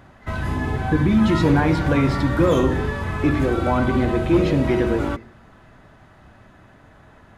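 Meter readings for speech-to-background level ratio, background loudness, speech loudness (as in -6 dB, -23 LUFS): 4.0 dB, -25.0 LUFS, -21.0 LUFS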